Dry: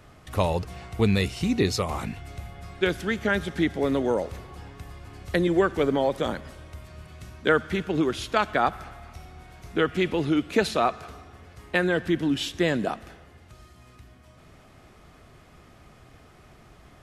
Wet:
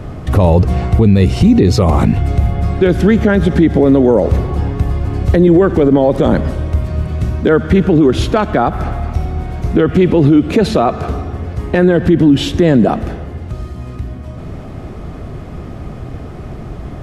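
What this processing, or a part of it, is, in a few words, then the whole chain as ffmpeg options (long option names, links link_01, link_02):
mastering chain: -af "equalizer=frequency=4000:width_type=o:width=2.4:gain=3,acompressor=threshold=-25dB:ratio=2.5,asoftclip=type=tanh:threshold=-11.5dB,tiltshelf=frequency=970:gain=10,alimiter=level_in=18dB:limit=-1dB:release=50:level=0:latency=1,volume=-1dB"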